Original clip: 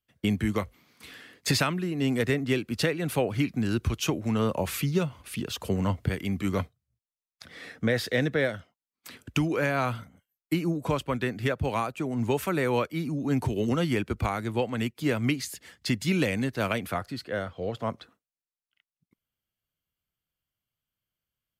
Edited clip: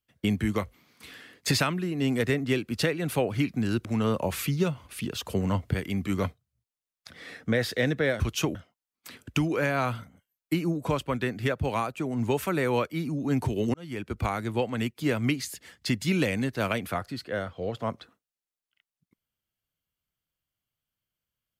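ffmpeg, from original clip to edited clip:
-filter_complex "[0:a]asplit=5[a][b][c][d][e];[a]atrim=end=3.852[f];[b]atrim=start=4.198:end=8.552[g];[c]atrim=start=3.848:end=4.202[h];[d]atrim=start=8.548:end=13.74,asetpts=PTS-STARTPTS,afade=t=out:st=5.188:d=0.004:c=hsin[i];[e]atrim=start=13.74,asetpts=PTS-STARTPTS,afade=t=in:d=0.54[j];[f][g]acrossfade=d=0.004:c1=hsin:c2=hsin[k];[k][h]acrossfade=d=0.004:c1=hsin:c2=hsin[l];[i][j]concat=n=2:v=0:a=1[m];[l][m]acrossfade=d=0.004:c1=hsin:c2=hsin"

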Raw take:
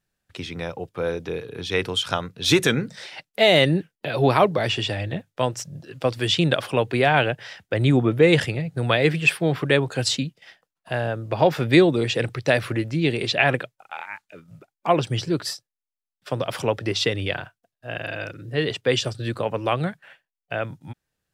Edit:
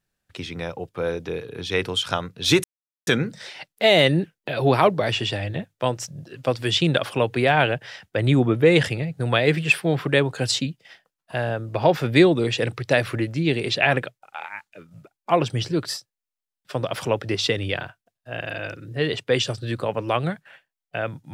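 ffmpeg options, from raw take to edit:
-filter_complex "[0:a]asplit=2[a][b];[a]atrim=end=2.64,asetpts=PTS-STARTPTS,afade=t=out:st=2.636:d=0.004:c=hsin,apad=pad_dur=0.43[c];[b]atrim=start=2.64,asetpts=PTS-STARTPTS,afade=t=in:d=0.004:c=hsin[d];[c][d]concat=n=2:v=0:a=1"

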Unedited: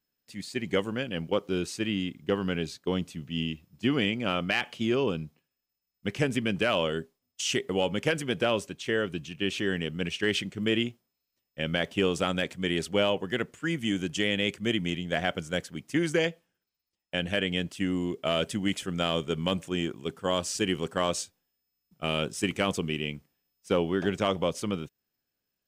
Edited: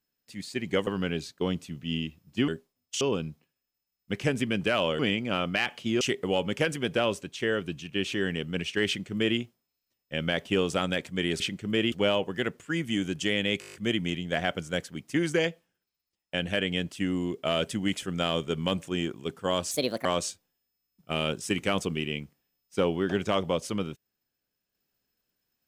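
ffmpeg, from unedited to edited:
-filter_complex "[0:a]asplit=17[a][b][c][d][e][f][g][h][i][j][k][l][m][n][o][p][q];[a]atrim=end=0.872[r];[b]atrim=start=2.328:end=3.942[s];[c]atrim=start=6.938:end=7.472[t];[d]atrim=start=4.958:end=6.942[u];[e]atrim=start=3.938:end=4.962[v];[f]atrim=start=7.468:end=12.862[w];[g]atrim=start=10.328:end=10.852[x];[h]atrim=start=12.858:end=14.562[y];[i]atrim=start=14.538:end=14.562[z];[j]atrim=start=14.538:end=14.562[aa];[k]atrim=start=14.538:end=14.562[ab];[l]atrim=start=14.538:end=14.562[ac];[m]atrim=start=14.538:end=14.562[ad];[n]atrim=start=14.538:end=14.562[ae];[o]atrim=start=14.538:end=20.514[af];[p]atrim=start=20.51:end=20.98,asetpts=PTS-STARTPTS,asetrate=60417,aresample=44100,atrim=end_sample=15129,asetpts=PTS-STARTPTS[ag];[q]atrim=start=20.976[ah];[r][s]acrossfade=d=0.004:c1=hsin:c2=hsin[ai];[ai][t]acrossfade=d=0.004:c1=hsin:c2=hsin[aj];[aj][u]acrossfade=d=0.004:c1=hsin:c2=hsin[ak];[ak][v]acrossfade=d=0.004:c1=hsin:c2=hsin[al];[al][w]acrossfade=d=0.004:c1=hsin:c2=hsin[am];[am][x]acrossfade=d=0.004:c1=hsin:c2=hsin[an];[an][y]acrossfade=d=0.004:c1=hsin:c2=hsin[ao];[ao][z]acrossfade=d=0.004:c1=hsin:c2=hsin[ap];[ap][aa]acrossfade=d=0.004:c1=hsin:c2=hsin[aq];[aq][ab]acrossfade=d=0.004:c1=hsin:c2=hsin[ar];[ar][ac]acrossfade=d=0.004:c1=hsin:c2=hsin[as];[as][ad]acrossfade=d=0.004:c1=hsin:c2=hsin[at];[at][ae]acrossfade=d=0.004:c1=hsin:c2=hsin[au];[au][af]acrossfade=d=0.004:c1=hsin:c2=hsin[av];[av][ag]acrossfade=d=0.004:c1=hsin:c2=hsin[aw];[aw][ah]acrossfade=d=0.004:c1=hsin:c2=hsin"

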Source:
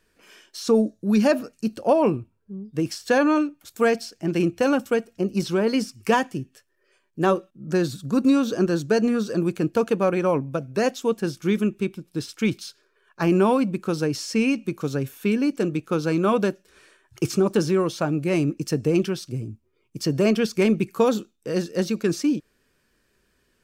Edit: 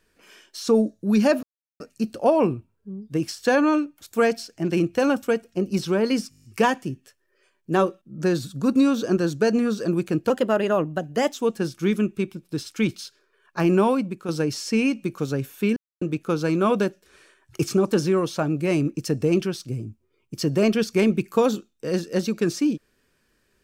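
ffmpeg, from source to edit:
-filter_complex "[0:a]asplit=14[a][b][c][d][e][f][g][h][i][j][k][l][m][n];[a]atrim=end=1.43,asetpts=PTS-STARTPTS,afade=t=out:st=1.426:d=0.004:c=hsin,apad=pad_dur=0.37[o];[b]atrim=start=1.43:end=5.952,asetpts=PTS-STARTPTS,afade=t=in:d=0.004:c=hsin[p];[c]atrim=start=5.928:end=5.952[q];[d]atrim=start=5.928:end=5.952[r];[e]atrim=start=5.928:end=5.952[s];[f]atrim=start=5.928:end=5.952[t];[g]atrim=start=5.928:end=5.952[u];[h]atrim=start=5.928:end=5.952[v];[i]atrim=start=5.928:end=9.794[w];[j]atrim=start=9.79:end=10.97,asetpts=PTS-STARTPTS,asetrate=49833,aresample=44100,atrim=end_sample=46051,asetpts=PTS-STARTPTS[x];[k]atrim=start=10.966:end=13.91,asetpts=PTS-STARTPTS,afade=t=out:st=2.484:d=0.46:silence=0.398107[y];[l]atrim=start=13.91:end=15.39,asetpts=PTS-STARTPTS,afade=t=in:d=0.004:c=hsin:silence=0.398107,afade=t=out:st=1.476:d=0.004:c=hsin[z];[m]atrim=start=15.39:end=15.64,asetpts=PTS-STARTPTS,volume=0[aa];[n]atrim=start=15.64,asetpts=PTS-STARTPTS,afade=t=in:d=0.004:c=hsin[ab];[o][p]concat=n=2:v=0:a=1[ac];[ac][q]acrossfade=d=0.004:c1=hsin:c2=hsin[ad];[ad][r]acrossfade=d=0.004:c1=hsin:c2=hsin[ae];[ae][s]acrossfade=d=0.004:c1=hsin:c2=hsin[af];[af][t]acrossfade=d=0.004:c1=hsin:c2=hsin[ag];[ag][u]acrossfade=d=0.004:c1=hsin:c2=hsin[ah];[ah][v]acrossfade=d=0.004:c1=hsin:c2=hsin[ai];[ai][w]acrossfade=d=0.004:c1=hsin:c2=hsin[aj];[aj][x]acrossfade=d=0.004:c1=hsin:c2=hsin[ak];[y][z][aa][ab]concat=n=4:v=0:a=1[al];[ak][al]acrossfade=d=0.004:c1=hsin:c2=hsin"

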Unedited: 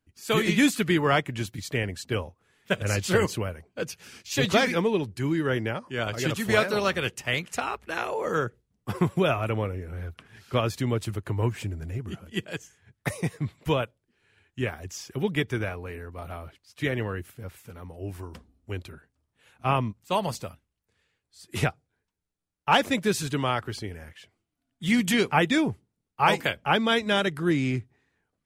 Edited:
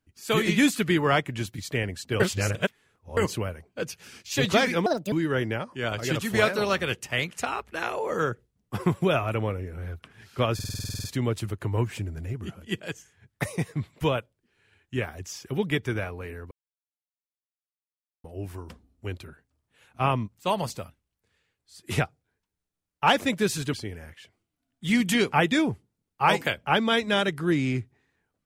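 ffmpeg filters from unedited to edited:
-filter_complex "[0:a]asplit=18[a][b][c][d][e][f][g][h][i][j][k][l][m][n][o][p][q][r];[a]atrim=end=2.202[s];[b]atrim=start=2.198:end=3.172,asetpts=PTS-STARTPTS,areverse[t];[c]atrim=start=3.168:end=4.864[u];[d]atrim=start=4.86:end=5.27,asetpts=PTS-STARTPTS,asetrate=69237,aresample=44100[v];[e]atrim=start=5.266:end=10.742[w];[f]atrim=start=10.688:end=10.742[x];[g]atrim=start=10.688:end=10.742[y];[h]atrim=start=10.688:end=10.742[z];[i]atrim=start=10.688:end=10.742[aa];[j]atrim=start=10.688:end=10.742[ab];[k]atrim=start=10.688:end=10.742[ac];[l]atrim=start=10.688:end=10.742[ad];[m]atrim=start=10.688:end=10.742[ae];[n]atrim=start=10.688:end=10.742[af];[o]atrim=start=10.688:end=16.16,asetpts=PTS-STARTPTS,afade=t=out:st=5.468:d=0.004:c=hsin[ag];[p]atrim=start=16.16:end=17.89,asetpts=PTS-STARTPTS,volume=0[ah];[q]atrim=start=17.89:end=23.382,asetpts=PTS-STARTPTS,afade=t=in:d=0.004:c=hsin[ai];[r]atrim=start=23.718[aj];[s][t]acrossfade=d=0.004:c1=hsin:c2=hsin[ak];[ak][u]acrossfade=d=0.004:c1=hsin:c2=hsin[al];[al][v]acrossfade=d=0.004:c1=hsin:c2=hsin[am];[am][w]acrossfade=d=0.004:c1=hsin:c2=hsin[an];[an][x]acrossfade=d=0.004:c1=hsin:c2=hsin[ao];[ao][y]acrossfade=d=0.004:c1=hsin:c2=hsin[ap];[ap][z]acrossfade=d=0.004:c1=hsin:c2=hsin[aq];[aq][aa]acrossfade=d=0.004:c1=hsin:c2=hsin[ar];[ar][ab]acrossfade=d=0.004:c1=hsin:c2=hsin[as];[as][ac]acrossfade=d=0.004:c1=hsin:c2=hsin[at];[at][ad]acrossfade=d=0.004:c1=hsin:c2=hsin[au];[au][ae]acrossfade=d=0.004:c1=hsin:c2=hsin[av];[av][af]acrossfade=d=0.004:c1=hsin:c2=hsin[aw];[ag][ah][ai]concat=n=3:v=0:a=1[ax];[aw][ax]acrossfade=d=0.004:c1=hsin:c2=hsin[ay];[ay][aj]acrossfade=d=0.004:c1=hsin:c2=hsin"

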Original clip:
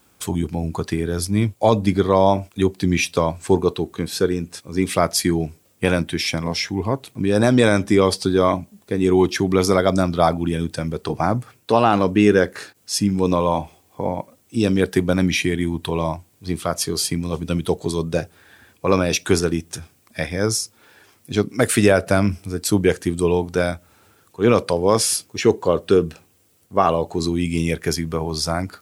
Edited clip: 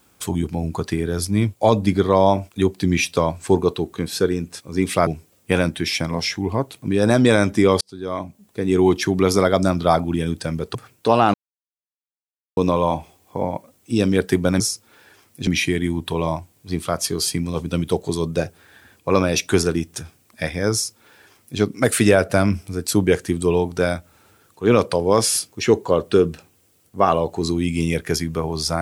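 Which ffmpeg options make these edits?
-filter_complex "[0:a]asplit=8[a][b][c][d][e][f][g][h];[a]atrim=end=5.072[i];[b]atrim=start=5.398:end=8.14,asetpts=PTS-STARTPTS,afade=t=out:st=2.738:d=0.004:c=hsin[j];[c]atrim=start=8.14:end=11.082,asetpts=PTS-STARTPTS,afade=t=in:d=0.96[k];[d]atrim=start=11.388:end=11.98,asetpts=PTS-STARTPTS,afade=t=out:st=0.588:d=0.004:c=hsin[l];[e]atrim=start=11.98:end=13.21,asetpts=PTS-STARTPTS,volume=0[m];[f]atrim=start=13.21:end=15.242,asetpts=PTS-STARTPTS,afade=t=in:d=0.004:c=hsin[n];[g]atrim=start=20.498:end=21.372[o];[h]atrim=start=15.238[p];[j][k]concat=n=2:v=0:a=1[q];[i][q]acrossfade=d=0.004:c1=hsin:c2=hsin[r];[l][m][n]concat=n=3:v=0:a=1[s];[r][s]acrossfade=d=0.004:c1=hsin:c2=hsin[t];[t][o]acrossfade=d=0.004:c1=hsin:c2=hsin[u];[u][p]acrossfade=d=0.004:c1=hsin:c2=hsin"

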